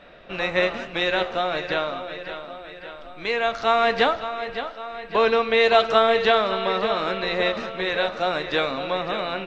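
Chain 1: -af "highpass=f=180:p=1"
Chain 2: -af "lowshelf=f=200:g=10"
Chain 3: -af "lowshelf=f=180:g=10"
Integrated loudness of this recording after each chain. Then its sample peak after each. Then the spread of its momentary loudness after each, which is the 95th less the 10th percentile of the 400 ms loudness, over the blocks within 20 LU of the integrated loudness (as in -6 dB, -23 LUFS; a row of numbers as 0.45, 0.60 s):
-23.0, -21.5, -22.0 LUFS; -4.0, -4.0, -4.5 dBFS; 16, 16, 16 LU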